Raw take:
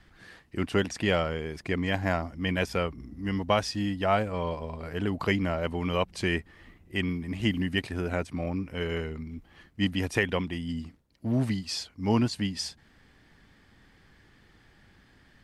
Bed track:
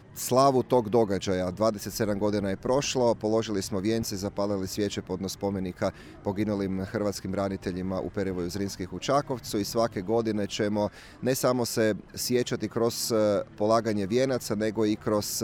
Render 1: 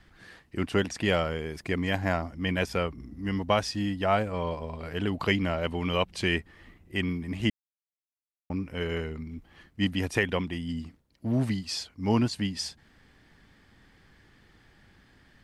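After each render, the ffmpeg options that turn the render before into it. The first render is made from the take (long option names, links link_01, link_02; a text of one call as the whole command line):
ffmpeg -i in.wav -filter_complex "[0:a]asettb=1/sr,asplit=3[link_01][link_02][link_03];[link_01]atrim=end=1.044[link_04];[link_02]atrim=start=1.04:end=1.97,asetpts=PTS-STARTPTS,afade=type=in:duration=0.004:curve=qsin,afade=type=out:start_time=0.926:duration=0.004:curve=qsin,highshelf=frequency=11000:gain=9.5[link_05];[link_03]atrim=start=1.966[link_06];[link_04][link_05]acrossfade=duration=0.004:curve1=hsin:curve2=qsin[link_07];[link_07][link_06]acrossfade=duration=0.004:curve1=qsin:curve2=hsin,asettb=1/sr,asplit=3[link_08][link_09][link_10];[link_08]atrim=end=4.744[link_11];[link_09]atrim=start=4.74:end=6.39,asetpts=PTS-STARTPTS,afade=type=in:duration=0.004:curve=qsin,afade=type=out:start_time=1.646:duration=0.004:curve=qsin,equalizer=frequency=3100:width=1.5:gain=4.5[link_12];[link_10]atrim=start=6.386[link_13];[link_11][link_12]acrossfade=duration=0.004:curve1=hsin:curve2=qsin[link_14];[link_14][link_13]acrossfade=duration=0.004:curve1=qsin:curve2=hsin,asplit=3[link_15][link_16][link_17];[link_15]atrim=end=7.5,asetpts=PTS-STARTPTS,afade=type=out:start_time=7.496:duration=0.004:curve=hsin[link_18];[link_16]atrim=start=7.5:end=8.5,asetpts=PTS-STARTPTS,volume=0[link_19];[link_17]atrim=start=8.5,asetpts=PTS-STARTPTS,afade=type=in:duration=0.004:curve=hsin[link_20];[link_18][link_19][link_20]concat=n=3:v=0:a=1" out.wav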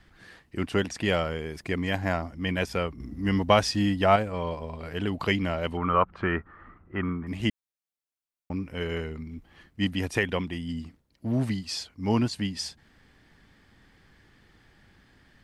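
ffmpeg -i in.wav -filter_complex "[0:a]asettb=1/sr,asplit=3[link_01][link_02][link_03];[link_01]atrim=end=3.004[link_04];[link_02]atrim=start=3:end=4.16,asetpts=PTS-STARTPTS,afade=type=in:duration=0.004:curve=qsin,afade=type=out:start_time=1.156:duration=0.004:curve=qsin,acontrast=23[link_05];[link_03]atrim=start=4.156[link_06];[link_04][link_05]acrossfade=duration=0.004:curve1=hsin:curve2=qsin[link_07];[link_07][link_06]acrossfade=duration=0.004:curve1=qsin:curve2=hsin,asettb=1/sr,asplit=3[link_08][link_09][link_10];[link_08]atrim=end=5.774[link_11];[link_09]atrim=start=5.77:end=7.27,asetpts=PTS-STARTPTS,afade=type=in:duration=0.004:curve=qsin,afade=type=out:start_time=1.496:duration=0.004:curve=qsin,lowpass=frequency=1300:width_type=q:width=7.4[link_12];[link_10]atrim=start=7.266[link_13];[link_11][link_12]acrossfade=duration=0.004:curve1=hsin:curve2=qsin[link_14];[link_14][link_13]acrossfade=duration=0.004:curve1=qsin:curve2=hsin" out.wav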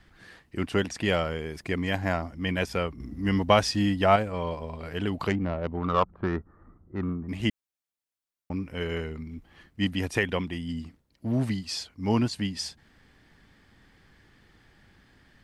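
ffmpeg -i in.wav -filter_complex "[0:a]asettb=1/sr,asplit=3[link_01][link_02][link_03];[link_01]atrim=end=5.284[link_04];[link_02]atrim=start=5.28:end=7.29,asetpts=PTS-STARTPTS,afade=type=in:duration=0.004:curve=qsin,afade=type=out:start_time=2.006:duration=0.004:curve=qsin,adynamicsmooth=sensitivity=0.5:basefreq=710[link_05];[link_03]atrim=start=7.286[link_06];[link_04][link_05]acrossfade=duration=0.004:curve1=hsin:curve2=qsin[link_07];[link_07][link_06]acrossfade=duration=0.004:curve1=qsin:curve2=hsin" out.wav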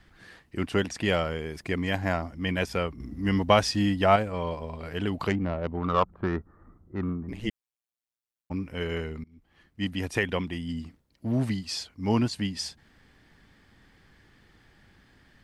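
ffmpeg -i in.wav -filter_complex "[0:a]asettb=1/sr,asplit=3[link_01][link_02][link_03];[link_01]atrim=end=7.294[link_04];[link_02]atrim=start=7.29:end=8.51,asetpts=PTS-STARTPTS,afade=type=in:duration=0.004:curve=qsin,afade=type=out:start_time=1.216:duration=0.004:curve=qsin,tremolo=f=120:d=0.919[link_05];[link_03]atrim=start=8.506[link_06];[link_04][link_05]acrossfade=duration=0.004:curve1=hsin:curve2=qsin[link_07];[link_07][link_06]acrossfade=duration=0.004:curve1=qsin:curve2=hsin,asplit=2[link_08][link_09];[link_08]atrim=end=9.24,asetpts=PTS-STARTPTS,afade=type=out:start_time=9.236:duration=0.004:curve=hsin:silence=0.0707946[link_10];[link_09]atrim=start=9.24,asetpts=PTS-STARTPTS,afade=type=in:duration=1.34:curve=qsin:silence=0.0707946[link_11];[link_10][link_11]concat=n=2:v=0:a=1" out.wav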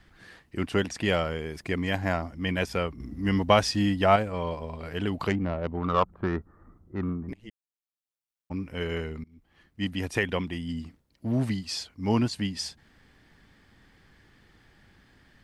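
ffmpeg -i in.wav -filter_complex "[0:a]asplit=2[link_01][link_02];[link_01]atrim=end=7.34,asetpts=PTS-STARTPTS,afade=type=out:start_time=7.336:duration=0.004:curve=hsin:silence=0.0944061[link_03];[link_02]atrim=start=7.34,asetpts=PTS-STARTPTS,afade=type=in:duration=1.42:silence=0.0944061[link_04];[link_03][link_04]concat=n=2:v=0:a=1" out.wav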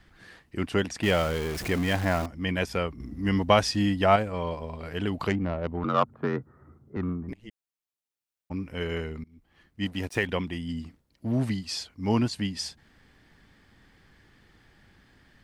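ffmpeg -i in.wav -filter_complex "[0:a]asettb=1/sr,asplit=3[link_01][link_02][link_03];[link_01]atrim=end=1.034[link_04];[link_02]atrim=start=1.03:end=2.26,asetpts=PTS-STARTPTS,afade=type=in:duration=0.004:curve=qsin,afade=type=out:start_time=1.226:duration=0.004:curve=qsin,aeval=exprs='val(0)+0.5*0.0299*sgn(val(0))':channel_layout=same[link_05];[link_03]atrim=start=2.256[link_06];[link_04][link_05]acrossfade=duration=0.004:curve1=hsin:curve2=qsin[link_07];[link_07][link_06]acrossfade=duration=0.004:curve1=qsin:curve2=hsin,asettb=1/sr,asplit=3[link_08][link_09][link_10];[link_08]atrim=end=5.844[link_11];[link_09]atrim=start=5.84:end=6.97,asetpts=PTS-STARTPTS,afade=type=in:duration=0.004:curve=qsin,afade=type=out:start_time=1.126:duration=0.004:curve=qsin,afreqshift=51[link_12];[link_10]atrim=start=6.966[link_13];[link_11][link_12]acrossfade=duration=0.004:curve1=hsin:curve2=qsin[link_14];[link_14][link_13]acrossfade=duration=0.004:curve1=qsin:curve2=hsin,asettb=1/sr,asplit=3[link_15][link_16][link_17];[link_15]atrim=end=9.854[link_18];[link_16]atrim=start=9.85:end=10.27,asetpts=PTS-STARTPTS,afade=type=in:duration=0.004:curve=qsin,afade=type=out:start_time=0.416:duration=0.004:curve=qsin,aeval=exprs='sgn(val(0))*max(abs(val(0))-0.00422,0)':channel_layout=same[link_19];[link_17]atrim=start=10.266[link_20];[link_18][link_19]acrossfade=duration=0.004:curve1=hsin:curve2=qsin[link_21];[link_21][link_20]acrossfade=duration=0.004:curve1=qsin:curve2=hsin" out.wav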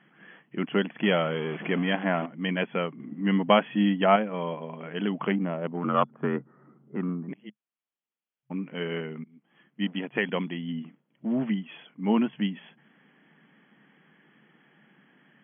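ffmpeg -i in.wav -af "afftfilt=real='re*between(b*sr/4096,130,3400)':imag='im*between(b*sr/4096,130,3400)':win_size=4096:overlap=0.75,equalizer=frequency=210:width=5.5:gain=4.5" out.wav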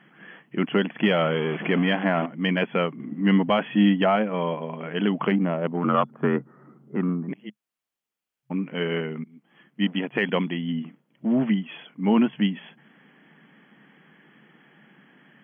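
ffmpeg -i in.wav -af "alimiter=limit=-15dB:level=0:latency=1:release=23,acontrast=32" out.wav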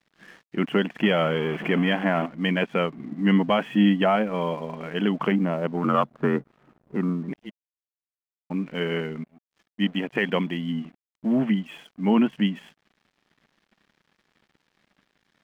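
ffmpeg -i in.wav -af "aeval=exprs='sgn(val(0))*max(abs(val(0))-0.00266,0)':channel_layout=same" out.wav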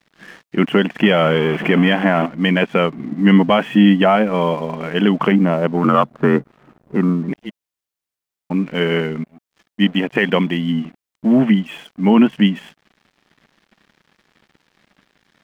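ffmpeg -i in.wav -af "volume=9dB,alimiter=limit=-3dB:level=0:latency=1" out.wav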